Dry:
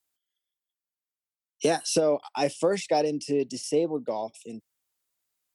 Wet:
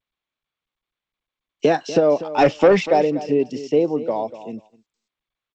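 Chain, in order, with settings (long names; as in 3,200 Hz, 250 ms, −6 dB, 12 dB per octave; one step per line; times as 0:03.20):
0:02.38–0:02.87: leveller curve on the samples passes 2
low-pass filter 2,800 Hz 12 dB per octave
on a send: repeating echo 242 ms, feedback 17%, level −14.5 dB
on the sum: noise gate −50 dBFS, range −28 dB
level +7 dB
G.722 64 kbit/s 16,000 Hz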